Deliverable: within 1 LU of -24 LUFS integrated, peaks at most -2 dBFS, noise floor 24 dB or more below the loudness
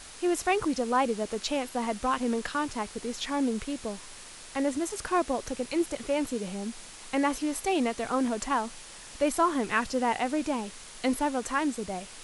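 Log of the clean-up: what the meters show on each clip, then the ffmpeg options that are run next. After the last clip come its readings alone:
noise floor -46 dBFS; noise floor target -54 dBFS; loudness -29.5 LUFS; peak level -12.0 dBFS; loudness target -24.0 LUFS
-> -af "afftdn=nr=8:nf=-46"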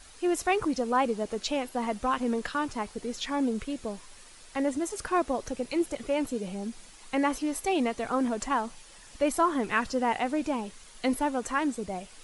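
noise floor -51 dBFS; noise floor target -54 dBFS
-> -af "afftdn=nr=6:nf=-51"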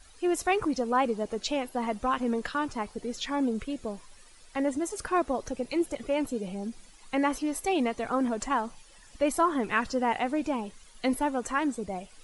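noise floor -54 dBFS; loudness -30.0 LUFS; peak level -12.5 dBFS; loudness target -24.0 LUFS
-> -af "volume=2"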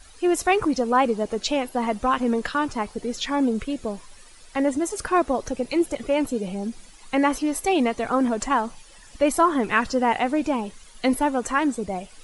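loudness -24.0 LUFS; peak level -6.5 dBFS; noise floor -48 dBFS

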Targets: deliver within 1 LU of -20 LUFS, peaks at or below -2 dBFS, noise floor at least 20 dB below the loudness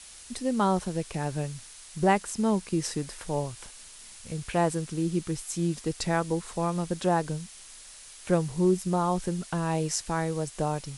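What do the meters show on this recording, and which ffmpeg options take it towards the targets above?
noise floor -48 dBFS; noise floor target -49 dBFS; loudness -29.0 LUFS; peak level -9.0 dBFS; loudness target -20.0 LUFS
-> -af "afftdn=nr=6:nf=-48"
-af "volume=2.82,alimiter=limit=0.794:level=0:latency=1"

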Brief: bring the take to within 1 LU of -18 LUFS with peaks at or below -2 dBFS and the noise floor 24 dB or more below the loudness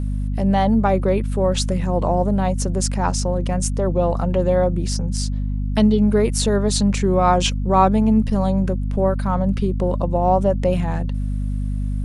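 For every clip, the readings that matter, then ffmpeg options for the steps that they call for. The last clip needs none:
hum 50 Hz; highest harmonic 250 Hz; hum level -20 dBFS; loudness -19.5 LUFS; peak level -2.5 dBFS; loudness target -18.0 LUFS
-> -af "bandreject=f=50:t=h:w=4,bandreject=f=100:t=h:w=4,bandreject=f=150:t=h:w=4,bandreject=f=200:t=h:w=4,bandreject=f=250:t=h:w=4"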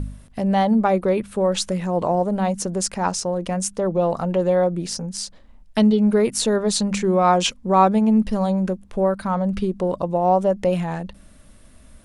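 hum not found; loudness -20.5 LUFS; peak level -3.5 dBFS; loudness target -18.0 LUFS
-> -af "volume=1.33,alimiter=limit=0.794:level=0:latency=1"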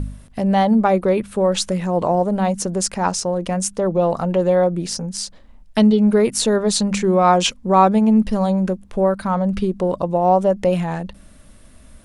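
loudness -18.0 LUFS; peak level -2.0 dBFS; noise floor -46 dBFS

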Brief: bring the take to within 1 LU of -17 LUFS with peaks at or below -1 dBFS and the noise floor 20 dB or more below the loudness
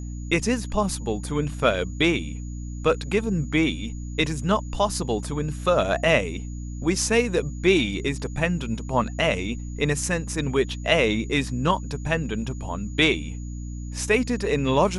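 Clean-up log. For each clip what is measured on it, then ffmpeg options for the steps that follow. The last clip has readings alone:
hum 60 Hz; highest harmonic 300 Hz; hum level -30 dBFS; steady tone 6.8 kHz; tone level -49 dBFS; loudness -24.0 LUFS; peak level -5.0 dBFS; loudness target -17.0 LUFS
-> -af "bandreject=f=60:t=h:w=4,bandreject=f=120:t=h:w=4,bandreject=f=180:t=h:w=4,bandreject=f=240:t=h:w=4,bandreject=f=300:t=h:w=4"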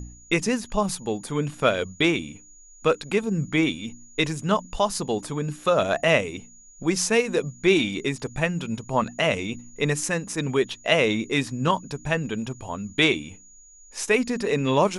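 hum not found; steady tone 6.8 kHz; tone level -49 dBFS
-> -af "bandreject=f=6800:w=30"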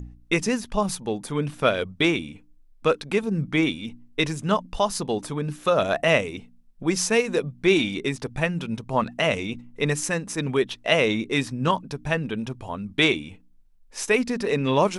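steady tone not found; loudness -24.5 LUFS; peak level -5.5 dBFS; loudness target -17.0 LUFS
-> -af "volume=2.37,alimiter=limit=0.891:level=0:latency=1"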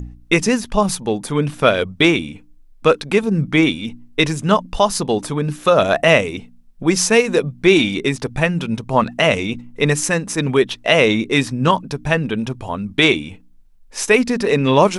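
loudness -17.0 LUFS; peak level -1.0 dBFS; noise floor -47 dBFS

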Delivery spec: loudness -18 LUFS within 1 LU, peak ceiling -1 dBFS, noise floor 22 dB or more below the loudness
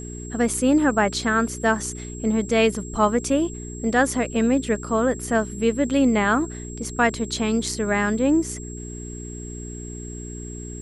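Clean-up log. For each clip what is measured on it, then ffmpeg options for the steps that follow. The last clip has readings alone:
hum 60 Hz; highest harmonic 420 Hz; hum level -33 dBFS; steady tone 7.6 kHz; tone level -39 dBFS; loudness -22.0 LUFS; peak level -6.0 dBFS; loudness target -18.0 LUFS
-> -af "bandreject=f=60:t=h:w=4,bandreject=f=120:t=h:w=4,bandreject=f=180:t=h:w=4,bandreject=f=240:t=h:w=4,bandreject=f=300:t=h:w=4,bandreject=f=360:t=h:w=4,bandreject=f=420:t=h:w=4"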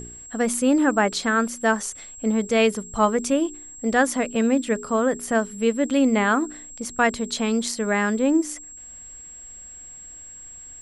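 hum not found; steady tone 7.6 kHz; tone level -39 dBFS
-> -af "bandreject=f=7600:w=30"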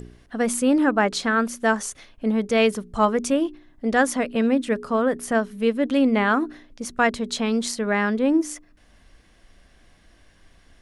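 steady tone not found; loudness -22.5 LUFS; peak level -6.5 dBFS; loudness target -18.0 LUFS
-> -af "volume=1.68"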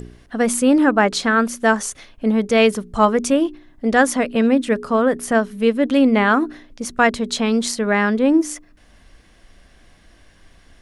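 loudness -18.0 LUFS; peak level -2.0 dBFS; noise floor -51 dBFS

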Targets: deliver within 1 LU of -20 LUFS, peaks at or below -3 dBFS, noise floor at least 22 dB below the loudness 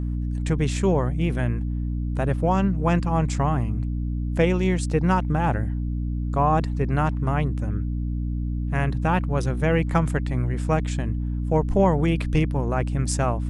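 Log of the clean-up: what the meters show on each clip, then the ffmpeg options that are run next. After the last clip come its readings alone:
hum 60 Hz; highest harmonic 300 Hz; hum level -24 dBFS; loudness -24.0 LUFS; peak level -7.0 dBFS; loudness target -20.0 LUFS
-> -af "bandreject=f=60:t=h:w=4,bandreject=f=120:t=h:w=4,bandreject=f=180:t=h:w=4,bandreject=f=240:t=h:w=4,bandreject=f=300:t=h:w=4"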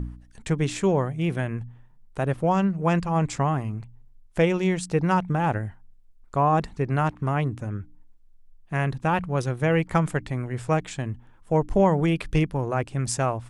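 hum not found; loudness -25.0 LUFS; peak level -9.0 dBFS; loudness target -20.0 LUFS
-> -af "volume=1.78"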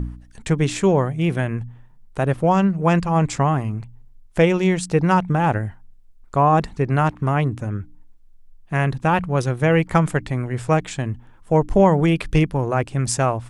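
loudness -20.0 LUFS; peak level -4.0 dBFS; noise floor -47 dBFS

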